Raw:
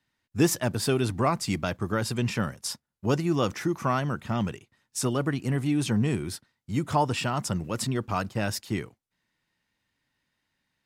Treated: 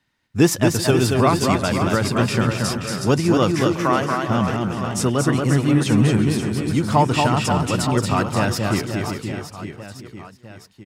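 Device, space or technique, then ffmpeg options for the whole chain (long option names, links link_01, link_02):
ducked delay: -filter_complex "[0:a]asplit=3[link_01][link_02][link_03];[link_02]adelay=369,volume=-3dB[link_04];[link_03]apad=whole_len=494830[link_05];[link_04][link_05]sidechaincompress=threshold=-38dB:ratio=5:attack=8.2:release=485[link_06];[link_01][link_06]amix=inputs=2:normalize=0,asettb=1/sr,asplit=3[link_07][link_08][link_09];[link_07]atrim=end=3.634[link_10];[link_08]atrim=start=3.63:end=4.28,asetpts=PTS-STARTPTS,afade=type=in:duration=0.004:curve=qsin,afade=type=out:start_time=0.646:duration=0.004:curve=qsin,highpass=280[link_11];[link_09]atrim=start=4.276[link_12];[link_10][link_11]acrossfade=duration=0.004:curve1=hsin:curve2=qsin[link_13];[link_13][link_12]acrossfade=duration=0.004:curve1=qsin:curve2=hsin,highshelf=frequency=7500:gain=-5,aecho=1:1:230|529|917.7|1423|2080:0.631|0.398|0.251|0.158|0.1,volume=7dB"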